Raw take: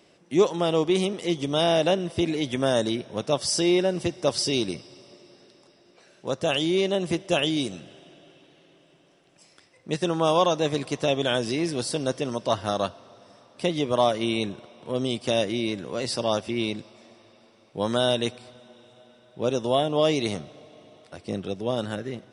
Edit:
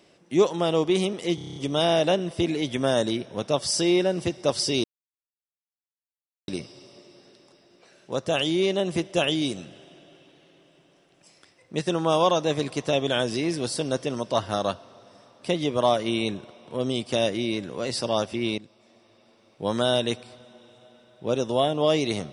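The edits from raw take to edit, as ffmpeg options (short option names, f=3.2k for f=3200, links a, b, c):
-filter_complex "[0:a]asplit=10[a][b][c][d][e][f][g][h][i][j];[a]atrim=end=1.382[k];[b]atrim=start=1.348:end=1.382[l];[c]atrim=start=1.348:end=1.382[m];[d]atrim=start=1.348:end=1.382[n];[e]atrim=start=1.348:end=1.382[o];[f]atrim=start=1.348:end=1.382[p];[g]atrim=start=1.348:end=1.382[q];[h]atrim=start=1.348:end=4.63,asetpts=PTS-STARTPTS,afade=t=out:st=3.278:d=0.004:c=hsin,apad=pad_dur=1.64[r];[i]atrim=start=4.63:end=16.73,asetpts=PTS-STARTPTS,afade=t=in:d=0.004:c=hsin,afade=t=out:st=12.096:d=0.004:c=hsin:silence=0.237137[s];[j]atrim=start=16.73,asetpts=PTS-STARTPTS,afade=t=in:d=1.07:silence=0.237137[t];[k][l]acrossfade=d=0.004:c1=hsin:c2=hsin[u];[u][m]acrossfade=d=0.004:c1=hsin:c2=hsin[v];[v][n]acrossfade=d=0.004:c1=hsin:c2=hsin[w];[w][o]acrossfade=d=0.004:c1=hsin:c2=hsin[x];[x][p]acrossfade=d=0.004:c1=hsin:c2=hsin[y];[y][q]acrossfade=d=0.004:c1=hsin:c2=hsin[z];[r][s][t]concat=n=3:v=0:a=1[aa];[z][aa]acrossfade=d=0.004:c1=hsin:c2=hsin"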